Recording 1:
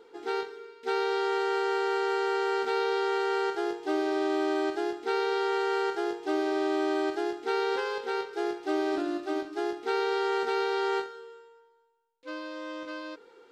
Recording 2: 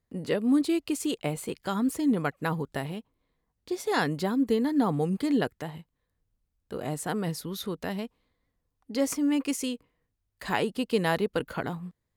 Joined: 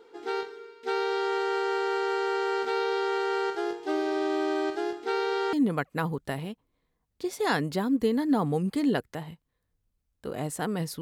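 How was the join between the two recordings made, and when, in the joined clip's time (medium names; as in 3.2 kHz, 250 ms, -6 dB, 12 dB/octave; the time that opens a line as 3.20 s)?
recording 1
5.53 s: go over to recording 2 from 2.00 s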